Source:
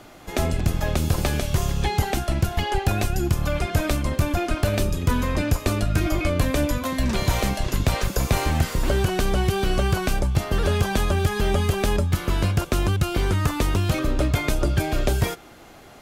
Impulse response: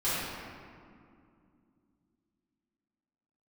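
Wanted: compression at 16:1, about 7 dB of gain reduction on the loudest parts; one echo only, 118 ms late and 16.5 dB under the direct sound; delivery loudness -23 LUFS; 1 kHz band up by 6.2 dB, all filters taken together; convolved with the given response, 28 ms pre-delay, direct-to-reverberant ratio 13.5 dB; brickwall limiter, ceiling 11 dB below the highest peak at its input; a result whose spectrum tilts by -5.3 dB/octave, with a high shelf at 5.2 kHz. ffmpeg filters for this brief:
-filter_complex "[0:a]equalizer=f=1000:t=o:g=8.5,highshelf=f=5200:g=-7.5,acompressor=threshold=0.0794:ratio=16,alimiter=limit=0.1:level=0:latency=1,aecho=1:1:118:0.15,asplit=2[s0][s1];[1:a]atrim=start_sample=2205,adelay=28[s2];[s1][s2]afir=irnorm=-1:irlink=0,volume=0.0631[s3];[s0][s3]amix=inputs=2:normalize=0,volume=2.24"

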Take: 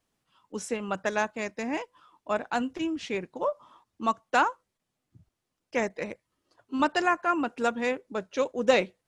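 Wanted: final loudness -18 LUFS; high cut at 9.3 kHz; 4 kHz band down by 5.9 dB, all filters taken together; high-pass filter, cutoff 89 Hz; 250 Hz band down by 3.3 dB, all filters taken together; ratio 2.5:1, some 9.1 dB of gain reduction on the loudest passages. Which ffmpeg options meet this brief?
-af "highpass=89,lowpass=9300,equalizer=f=250:t=o:g=-4,equalizer=f=4000:t=o:g=-8.5,acompressor=threshold=0.0282:ratio=2.5,volume=7.5"

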